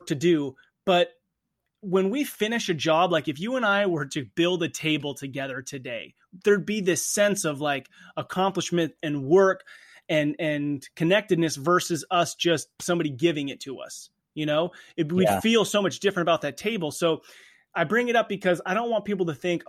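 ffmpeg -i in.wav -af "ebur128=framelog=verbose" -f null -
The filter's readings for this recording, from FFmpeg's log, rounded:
Integrated loudness:
  I:         -24.9 LUFS
  Threshold: -35.3 LUFS
Loudness range:
  LRA:         2.1 LU
  Threshold: -45.3 LUFS
  LRA low:   -26.6 LUFS
  LRA high:  -24.5 LUFS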